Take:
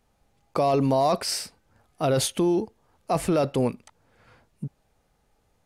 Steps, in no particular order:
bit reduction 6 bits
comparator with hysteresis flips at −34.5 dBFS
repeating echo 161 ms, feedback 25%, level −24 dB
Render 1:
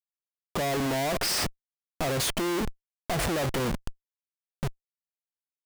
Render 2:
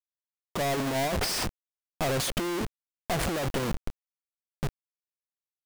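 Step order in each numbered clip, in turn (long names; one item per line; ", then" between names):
bit reduction, then repeating echo, then comparator with hysteresis
repeating echo, then comparator with hysteresis, then bit reduction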